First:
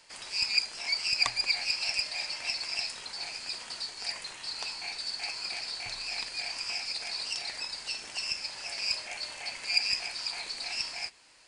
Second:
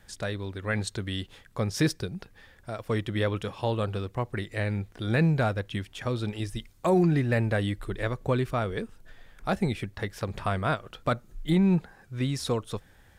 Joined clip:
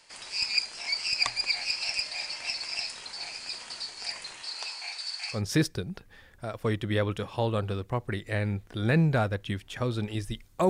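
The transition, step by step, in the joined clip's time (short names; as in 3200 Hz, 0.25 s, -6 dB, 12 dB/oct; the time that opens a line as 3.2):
first
4.42–5.42 HPF 290 Hz -> 1300 Hz
5.36 switch to second from 1.61 s, crossfade 0.12 s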